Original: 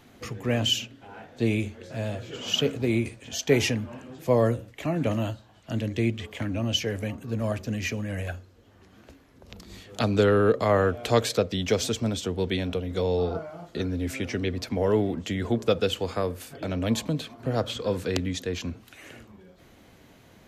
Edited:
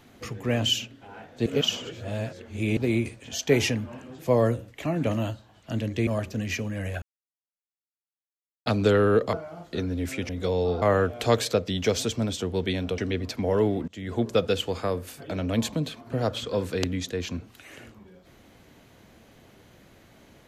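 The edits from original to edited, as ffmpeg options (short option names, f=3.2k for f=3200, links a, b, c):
-filter_complex "[0:a]asplit=11[a][b][c][d][e][f][g][h][i][j][k];[a]atrim=end=1.462[l];[b]atrim=start=1.458:end=2.772,asetpts=PTS-STARTPTS,areverse[m];[c]atrim=start=2.768:end=6.072[n];[d]atrim=start=7.398:end=8.35,asetpts=PTS-STARTPTS,afade=t=out:st=0.948:d=0.004:c=hsin[o];[e]atrim=start=8.35:end=9.99,asetpts=PTS-STARTPTS,volume=0[p];[f]atrim=start=9.99:end=10.662,asetpts=PTS-STARTPTS,afade=t=in:d=0.004:c=hsin[q];[g]atrim=start=13.348:end=14.312[r];[h]atrim=start=12.818:end=13.352[s];[i]atrim=start=10.658:end=12.822[t];[j]atrim=start=14.308:end=15.21,asetpts=PTS-STARTPTS,afade=t=out:st=0.898:d=0.004:c=hsin:silence=0.0749894[u];[k]atrim=start=15.21,asetpts=PTS-STARTPTS,afade=t=in:d=0.34:silence=0.0749894[v];[l][m]acrossfade=d=0.004:c1=hsin:c2=hsin[w];[w][n]acrossfade=d=0.004:c1=hsin:c2=hsin[x];[o][p][q]concat=n=3:v=0:a=1[y];[x][y]acrossfade=d=0.004:c1=hsin:c2=hsin[z];[z][r]acrossfade=d=0.004:c1=hsin:c2=hsin[aa];[aa][s]acrossfade=d=0.004:c1=hsin:c2=hsin[ab];[ab][t]acrossfade=d=0.004:c1=hsin:c2=hsin[ac];[u][v]concat=n=2:v=0:a=1[ad];[ac][ad]acrossfade=d=0.004:c1=hsin:c2=hsin"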